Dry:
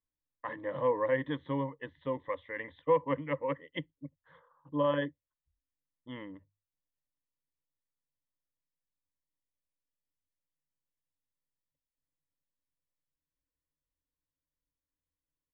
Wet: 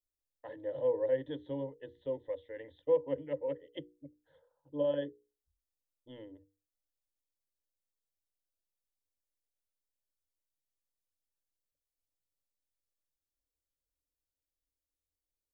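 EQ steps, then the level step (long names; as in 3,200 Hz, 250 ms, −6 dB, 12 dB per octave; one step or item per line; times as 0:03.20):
parametric band 2,200 Hz −14 dB 0.72 octaves
mains-hum notches 60/120/180/240/300/360/420/480 Hz
phaser with its sweep stopped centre 470 Hz, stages 4
0.0 dB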